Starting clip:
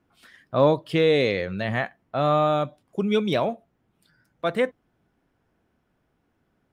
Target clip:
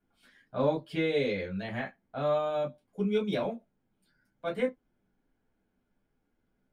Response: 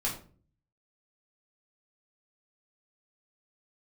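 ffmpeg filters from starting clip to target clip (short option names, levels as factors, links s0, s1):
-filter_complex "[1:a]atrim=start_sample=2205,atrim=end_sample=3969,asetrate=83790,aresample=44100[s0];[0:a][s0]afir=irnorm=-1:irlink=0,volume=0.355"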